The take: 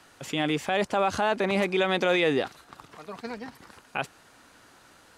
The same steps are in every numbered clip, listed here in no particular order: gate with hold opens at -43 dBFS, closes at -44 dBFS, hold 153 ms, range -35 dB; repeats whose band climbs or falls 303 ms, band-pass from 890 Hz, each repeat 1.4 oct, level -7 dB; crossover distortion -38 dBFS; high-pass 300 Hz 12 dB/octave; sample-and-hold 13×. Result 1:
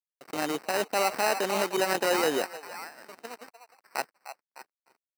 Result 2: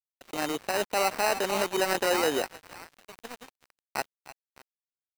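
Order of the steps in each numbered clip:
gate with hold > crossover distortion > repeats whose band climbs or falls > sample-and-hold > high-pass; gate with hold > repeats whose band climbs or falls > sample-and-hold > high-pass > crossover distortion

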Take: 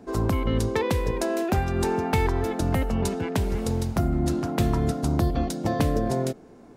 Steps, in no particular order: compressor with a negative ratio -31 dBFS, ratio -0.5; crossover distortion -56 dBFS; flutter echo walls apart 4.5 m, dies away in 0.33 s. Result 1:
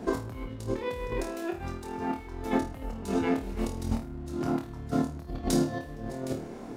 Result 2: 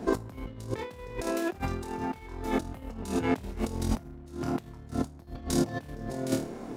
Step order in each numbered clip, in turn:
compressor with a negative ratio > crossover distortion > flutter echo; flutter echo > compressor with a negative ratio > crossover distortion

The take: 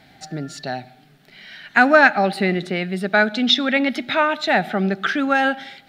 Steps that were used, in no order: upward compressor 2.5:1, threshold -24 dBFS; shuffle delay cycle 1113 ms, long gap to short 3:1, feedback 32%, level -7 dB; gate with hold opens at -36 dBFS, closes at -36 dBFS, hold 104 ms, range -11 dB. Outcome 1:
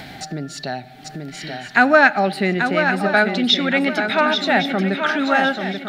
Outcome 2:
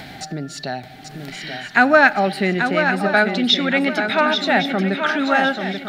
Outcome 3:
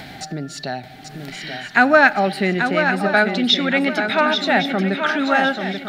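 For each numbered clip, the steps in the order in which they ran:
shuffle delay > upward compressor > gate with hold; upward compressor > shuffle delay > gate with hold; upward compressor > gate with hold > shuffle delay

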